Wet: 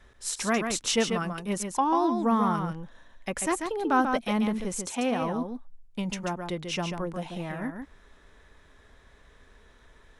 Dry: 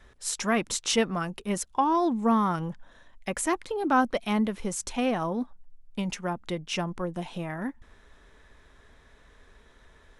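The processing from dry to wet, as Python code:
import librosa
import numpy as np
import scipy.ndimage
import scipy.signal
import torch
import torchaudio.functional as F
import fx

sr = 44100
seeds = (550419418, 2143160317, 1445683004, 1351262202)

p1 = fx.highpass(x, sr, hz=140.0, slope=12, at=(4.72, 5.22))
p2 = p1 + fx.echo_single(p1, sr, ms=140, db=-6.0, dry=0)
y = p2 * 10.0 ** (-1.0 / 20.0)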